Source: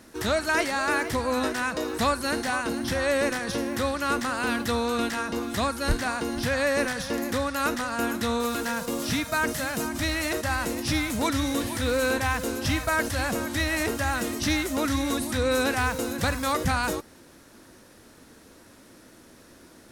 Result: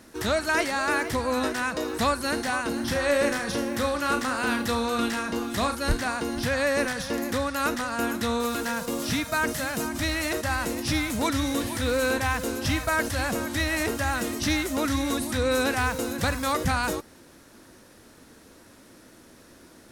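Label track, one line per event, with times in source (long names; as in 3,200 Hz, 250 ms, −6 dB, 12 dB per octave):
2.720000	5.750000	flutter between parallel walls apart 6 metres, dies away in 0.27 s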